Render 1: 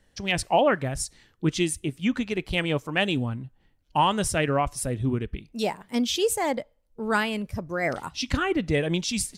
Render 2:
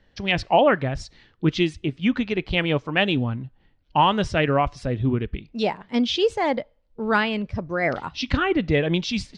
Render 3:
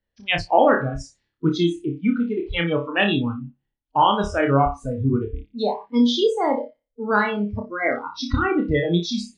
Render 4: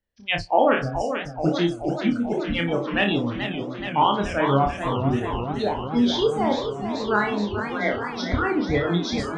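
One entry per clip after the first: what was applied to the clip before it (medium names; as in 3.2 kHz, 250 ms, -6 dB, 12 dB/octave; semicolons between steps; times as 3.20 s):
low-pass 4.6 kHz 24 dB/octave; trim +3.5 dB
flutter echo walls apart 5 m, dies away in 0.4 s; spectral noise reduction 23 dB
modulated delay 432 ms, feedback 76%, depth 170 cents, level -8.5 dB; trim -2.5 dB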